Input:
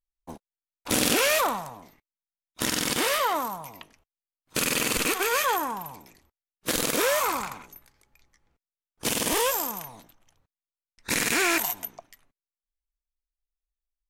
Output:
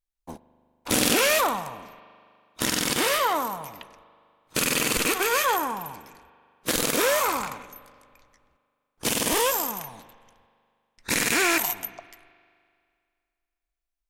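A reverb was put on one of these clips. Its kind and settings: spring tank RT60 2.2 s, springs 40 ms, chirp 70 ms, DRR 16.5 dB; trim +1.5 dB

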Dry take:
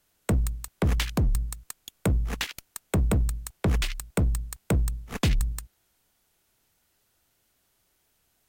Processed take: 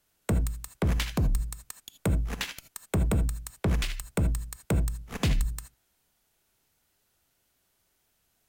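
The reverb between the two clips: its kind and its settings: gated-style reverb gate 100 ms rising, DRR 9.5 dB; trim -2.5 dB

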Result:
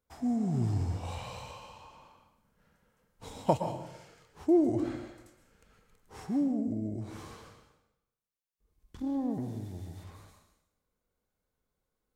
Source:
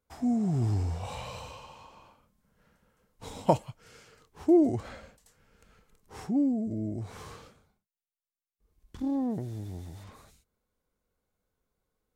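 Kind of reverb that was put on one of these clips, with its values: plate-style reverb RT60 0.86 s, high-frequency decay 0.9×, pre-delay 105 ms, DRR 6 dB; trim -3 dB

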